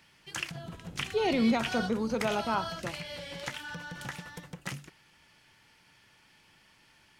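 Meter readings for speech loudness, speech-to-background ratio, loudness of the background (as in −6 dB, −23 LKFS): −30.0 LKFS, 8.5 dB, −38.5 LKFS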